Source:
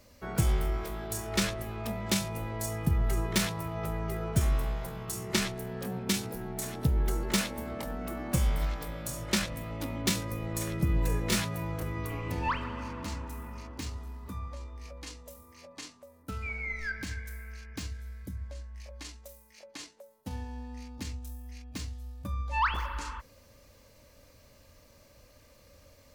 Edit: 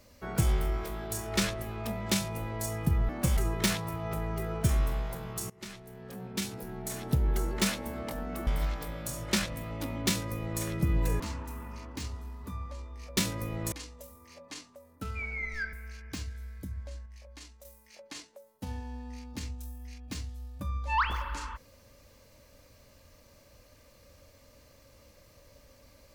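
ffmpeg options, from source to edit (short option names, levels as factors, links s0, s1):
-filter_complex "[0:a]asplit=11[s0][s1][s2][s3][s4][s5][s6][s7][s8][s9][s10];[s0]atrim=end=3.092[s11];[s1]atrim=start=8.188:end=8.472[s12];[s2]atrim=start=3.088:end=5.22,asetpts=PTS-STARTPTS,afade=t=out:st=2.128:d=0.004:c=hsin:silence=0.0794328[s13];[s3]atrim=start=5.22:end=8.192,asetpts=PTS-STARTPTS,afade=t=in:d=1.61:silence=0.0794328[s14];[s4]atrim=start=8.468:end=11.202[s15];[s5]atrim=start=13.018:end=14.992[s16];[s6]atrim=start=10.068:end=10.622[s17];[s7]atrim=start=14.988:end=17.002[s18];[s8]atrim=start=17.368:end=18.702[s19];[s9]atrim=start=18.698:end=19.292,asetpts=PTS-STARTPTS,volume=0.562[s20];[s10]atrim=start=19.288[s21];[s11][s12]acrossfade=d=0.004:c1=hsin:c2=hsin[s22];[s13][s14]concat=n=2:v=0:a=1[s23];[s22][s23]acrossfade=d=0.004:c1=hsin:c2=hsin[s24];[s24][s15]acrossfade=d=0.004:c1=hsin:c2=hsin[s25];[s25][s16]acrossfade=d=0.004:c1=hsin:c2=hsin[s26];[s26][s17]acrossfade=d=0.004:c1=hsin:c2=hsin[s27];[s27][s18]acrossfade=d=0.004:c1=hsin:c2=hsin[s28];[s28][s19]acrossfade=d=0.004:c1=hsin:c2=hsin[s29];[s29][s20]acrossfade=d=0.004:c1=hsin:c2=hsin[s30];[s30][s21]acrossfade=d=0.004:c1=hsin:c2=hsin"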